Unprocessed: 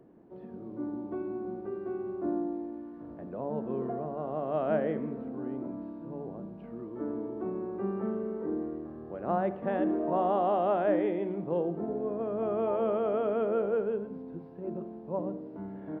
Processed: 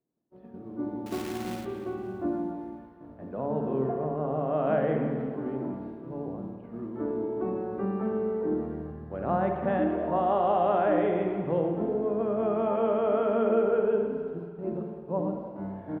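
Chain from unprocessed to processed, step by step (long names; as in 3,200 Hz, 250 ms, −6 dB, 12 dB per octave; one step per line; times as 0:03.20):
downward expander −38 dBFS
parametric band 410 Hz −2.5 dB 1.1 octaves
in parallel at −2 dB: brickwall limiter −27 dBFS, peak gain reduction 9.5 dB
0:01.06–0:01.65: on the sum: log-companded quantiser 4 bits
0:03.88–0:04.67: high-frequency loss of the air 190 metres
repeating echo 286 ms, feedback 49%, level −18 dB
on a send at −4 dB: convolution reverb RT60 1.6 s, pre-delay 52 ms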